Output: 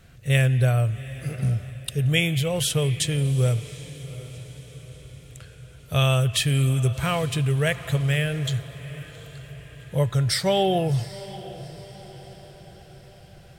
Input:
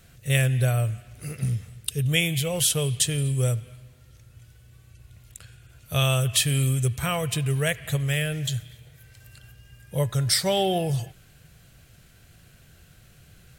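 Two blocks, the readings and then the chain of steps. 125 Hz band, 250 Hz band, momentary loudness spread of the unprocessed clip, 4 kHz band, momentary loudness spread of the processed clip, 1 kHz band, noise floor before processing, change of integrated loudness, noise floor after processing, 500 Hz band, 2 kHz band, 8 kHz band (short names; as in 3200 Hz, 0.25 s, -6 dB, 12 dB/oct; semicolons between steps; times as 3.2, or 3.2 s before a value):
+2.5 dB, +2.5 dB, 9 LU, -0.5 dB, 20 LU, +2.5 dB, -55 dBFS, +1.0 dB, -48 dBFS, +2.5 dB, +1.0 dB, -5.0 dB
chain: high shelf 5400 Hz -10.5 dB; on a send: diffused feedback echo 0.77 s, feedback 51%, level -16 dB; on the sum: gain +2.5 dB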